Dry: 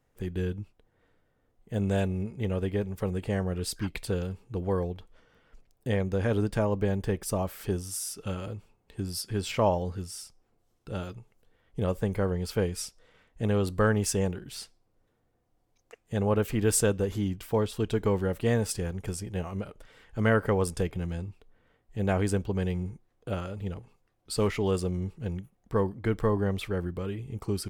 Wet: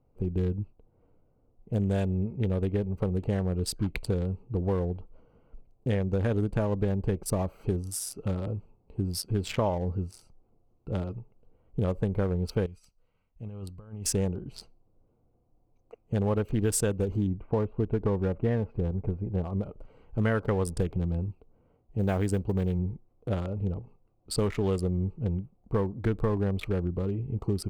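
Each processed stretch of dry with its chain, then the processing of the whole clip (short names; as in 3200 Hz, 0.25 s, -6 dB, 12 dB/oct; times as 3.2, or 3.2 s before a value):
12.66–14.05 passive tone stack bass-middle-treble 5-5-5 + negative-ratio compressor -43 dBFS, ratio -0.5
17.27–19.55 LPF 2100 Hz 24 dB/oct + notch 1300 Hz, Q 20
21.29–22.79 HPF 41 Hz 6 dB/oct + modulation noise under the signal 29 dB
whole clip: Wiener smoothing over 25 samples; compressor 3:1, threshold -29 dBFS; low shelf 190 Hz +3 dB; gain +3.5 dB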